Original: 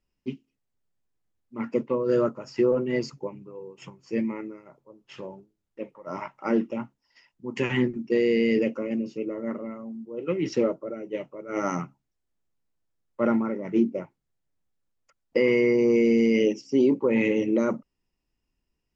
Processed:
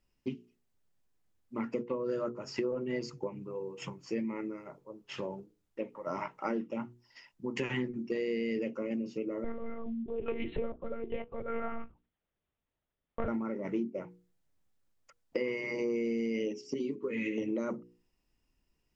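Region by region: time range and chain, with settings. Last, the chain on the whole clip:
9.44–13.28 HPF 96 Hz + short-mantissa float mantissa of 4-bit + monotone LPC vocoder at 8 kHz 230 Hz
16.74–17.38 Butterworth band-stop 730 Hz, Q 0.91 + low shelf 130 Hz -7.5 dB + ensemble effect
whole clip: notches 60/120/180/240/300/360/420/480 Hz; compressor 4:1, threshold -36 dBFS; gain +3 dB

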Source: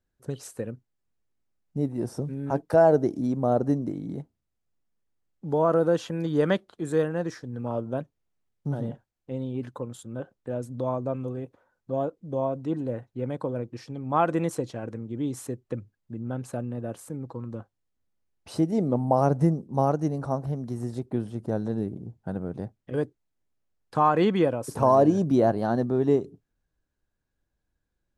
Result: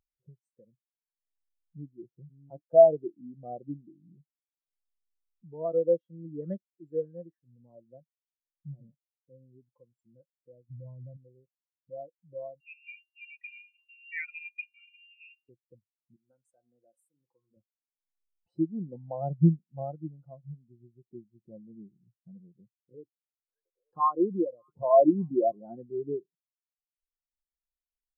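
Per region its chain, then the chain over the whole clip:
10.7–11.17 RIAA curve playback + compressor 16:1, threshold -23 dBFS
12.6–15.49 notches 60/120/180/240/300/360/420/480 Hz + comb 2 ms, depth 90% + inverted band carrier 2900 Hz
16.16–17.57 tilt +4.5 dB/oct + de-hum 78.73 Hz, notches 32
22.47–25.66 formant sharpening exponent 1.5 + delay with a stepping band-pass 0.295 s, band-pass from 2900 Hz, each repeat -0.7 oct, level -7.5 dB
whole clip: comb 5.7 ms, depth 35%; upward compressor, threshold -27 dBFS; spectral expander 2.5:1

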